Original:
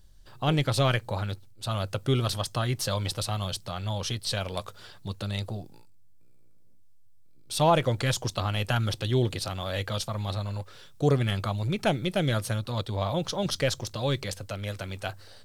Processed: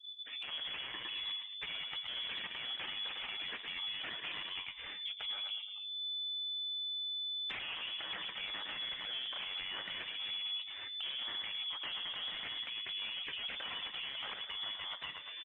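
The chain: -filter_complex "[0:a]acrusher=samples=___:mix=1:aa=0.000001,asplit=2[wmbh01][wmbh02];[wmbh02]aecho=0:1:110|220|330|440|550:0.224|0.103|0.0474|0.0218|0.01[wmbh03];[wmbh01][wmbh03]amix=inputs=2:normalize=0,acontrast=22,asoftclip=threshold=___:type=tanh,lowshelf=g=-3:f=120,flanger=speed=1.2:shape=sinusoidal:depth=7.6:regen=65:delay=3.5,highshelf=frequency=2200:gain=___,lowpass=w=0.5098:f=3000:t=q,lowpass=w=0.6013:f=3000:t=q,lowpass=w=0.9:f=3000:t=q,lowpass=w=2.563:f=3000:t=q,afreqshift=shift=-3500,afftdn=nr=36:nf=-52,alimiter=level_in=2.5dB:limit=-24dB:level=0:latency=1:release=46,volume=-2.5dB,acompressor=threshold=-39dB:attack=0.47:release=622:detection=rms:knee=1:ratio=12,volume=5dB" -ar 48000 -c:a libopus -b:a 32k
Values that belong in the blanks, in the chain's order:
9, -22.5dB, 10.5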